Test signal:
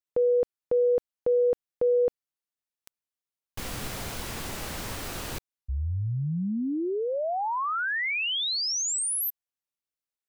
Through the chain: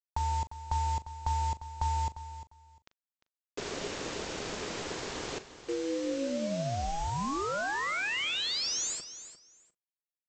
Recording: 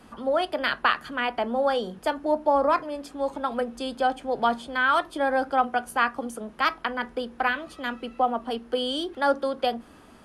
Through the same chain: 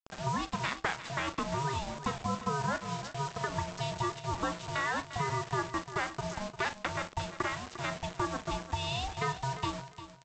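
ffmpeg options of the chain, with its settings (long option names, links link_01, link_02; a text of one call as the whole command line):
ffmpeg -i in.wav -filter_complex "[0:a]acompressor=threshold=-28dB:ratio=4:attack=16:release=417:knee=1:detection=peak,aeval=exprs='val(0)+0.002*(sin(2*PI*60*n/s)+sin(2*PI*2*60*n/s)/2+sin(2*PI*3*60*n/s)/3+sin(2*PI*4*60*n/s)/4+sin(2*PI*5*60*n/s)/5)':channel_layout=same,aeval=exprs='val(0)*sin(2*PI*410*n/s)':channel_layout=same,aresample=16000,acrusher=bits=6:mix=0:aa=0.000001,aresample=44100,asplit=2[link_01][link_02];[link_02]adelay=40,volume=-14dB[link_03];[link_01][link_03]amix=inputs=2:normalize=0,asplit=2[link_04][link_05];[link_05]aecho=0:1:350|700:0.224|0.0425[link_06];[link_04][link_06]amix=inputs=2:normalize=0" out.wav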